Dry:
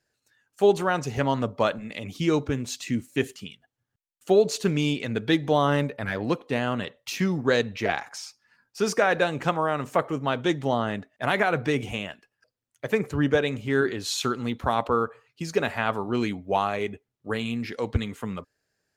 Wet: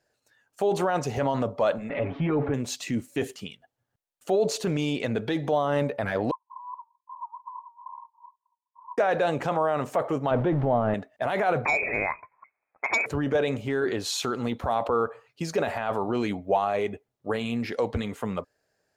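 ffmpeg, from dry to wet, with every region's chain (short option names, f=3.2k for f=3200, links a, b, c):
-filter_complex "[0:a]asettb=1/sr,asplit=3[a][b][c];[a]atrim=end=1.894[d];[b]atrim=start=1.89:end=2.54,asetpts=PTS-STARTPTS,afade=t=in:d=0.004:c=qsin,afade=t=out:st=0.646:d=0.004:c=qsin,aeval=exprs='val(0)+0.5*0.0119*sgn(val(0))':c=same,lowpass=f=2.2k:w=0.5412,lowpass=f=2.2k:w=1.3066,aecho=1:1:7.2:0.91,atrim=end_sample=28665[e];[c]atrim=start=2.536[f];[d][e]acrossfade=d=0.004:c1=hsin:c2=qsin[g];[g][f]acrossfade=d=0.004:c1=qsin:c2=hsin,asettb=1/sr,asplit=3[h][i][j];[h]atrim=end=6.314[k];[i]atrim=start=6.31:end=8.98,asetpts=PTS-STARTPTS,afade=t=in:d=0.004:c=qsin,afade=t=out:st=2.666:d=0.004:c=qsin,acrusher=samples=24:mix=1:aa=0.000001:lfo=1:lforange=38.4:lforate=2.3,asuperpass=centerf=1000:order=8:qfactor=7.1[l];[j]atrim=start=8.976[m];[k][l]acrossfade=d=0.004:c1=hsin:c2=qsin[n];[n][m]acrossfade=d=0.004:c1=qsin:c2=hsin,asettb=1/sr,asplit=3[o][p][q];[o]atrim=end=10.314[r];[p]atrim=start=10.31:end=10.94,asetpts=PTS-STARTPTS,afade=t=in:d=0.004:c=qsin,afade=t=out:st=0.626:d=0.004:c=qsin,aeval=exprs='val(0)+0.5*0.02*sgn(val(0))':c=same,lowpass=1.6k,lowshelf=f=140:g=12[s];[q]atrim=start=10.936[t];[r][s]acrossfade=d=0.004:c1=hsin:c2=qsin[u];[u][t]acrossfade=d=0.004:c1=qsin:c2=hsin,asettb=1/sr,asplit=3[v][w][x];[v]atrim=end=11.654[y];[w]atrim=start=11.65:end=13.06,asetpts=PTS-STARTPTS,afade=t=in:d=0.004:c=qsin,afade=t=out:st=1.406:d=0.004:c=qsin,highpass=290,lowpass=f=2.3k:t=q:w=0.5098,lowpass=f=2.3k:t=q:w=0.6013,lowpass=f=2.3k:t=q:w=0.9,lowpass=f=2.3k:t=q:w=2.563,afreqshift=-2700,aeval=exprs='0.266*sin(PI/2*2*val(0)/0.266)':c=same[z];[x]atrim=start=13.056[aa];[y][z]acrossfade=d=0.004:c1=hsin:c2=qsin[ab];[ab][aa]acrossfade=d=0.004:c1=qsin:c2=hsin,alimiter=limit=-20.5dB:level=0:latency=1:release=14,equalizer=f=650:t=o:w=1.3:g=9"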